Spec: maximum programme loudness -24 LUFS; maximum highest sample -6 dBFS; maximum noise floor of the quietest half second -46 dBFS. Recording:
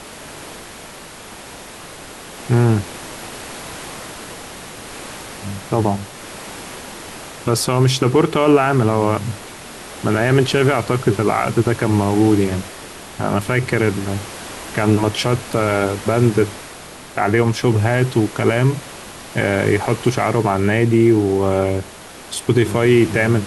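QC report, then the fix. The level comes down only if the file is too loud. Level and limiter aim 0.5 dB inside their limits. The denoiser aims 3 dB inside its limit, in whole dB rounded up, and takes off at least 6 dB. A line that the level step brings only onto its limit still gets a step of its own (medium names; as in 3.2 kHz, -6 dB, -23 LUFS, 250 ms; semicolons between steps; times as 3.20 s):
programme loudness -17.5 LUFS: fail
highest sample -3.5 dBFS: fail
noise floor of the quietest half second -37 dBFS: fail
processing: noise reduction 6 dB, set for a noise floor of -37 dBFS; trim -7 dB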